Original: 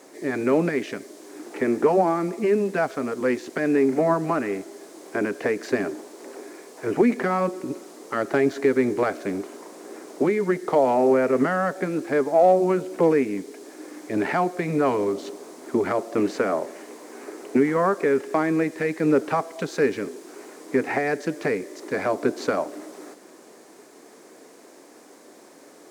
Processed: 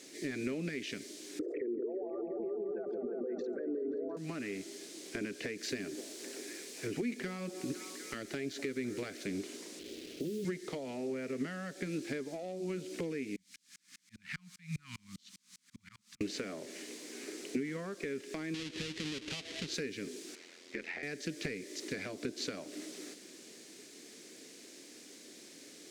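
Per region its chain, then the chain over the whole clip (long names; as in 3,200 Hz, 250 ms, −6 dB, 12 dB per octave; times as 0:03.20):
0:01.39–0:04.17: spectral envelope exaggerated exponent 3 + echo whose low-pass opens from repeat to repeat 176 ms, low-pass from 750 Hz, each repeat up 1 octave, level −3 dB + envelope flattener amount 50%
0:05.58–0:09.24: high-shelf EQ 8,100 Hz +5.5 dB + echo through a band-pass that steps 252 ms, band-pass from 630 Hz, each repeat 0.7 octaves, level −11 dB
0:09.79–0:10.45: downward compressor 5 to 1, threshold −25 dBFS + Butterworth low-pass 640 Hz + bit-depth reduction 8 bits, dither none
0:13.36–0:16.21: elliptic band-stop filter 200–1,100 Hz, stop band 50 dB + volume swells 187 ms + tremolo with a ramp in dB swelling 5 Hz, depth 36 dB
0:18.54–0:19.74: each half-wave held at its own peak + low-pass filter 6,600 Hz + downward compressor 2.5 to 1, threshold −32 dBFS
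0:20.35–0:21.03: high-pass filter 130 Hz + three-way crossover with the lows and the highs turned down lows −13 dB, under 490 Hz, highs −14 dB, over 5,300 Hz + ring modulation 43 Hz
whole clip: meter weighting curve D; downward compressor, threshold −28 dBFS; guitar amp tone stack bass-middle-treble 10-0-1; level +15.5 dB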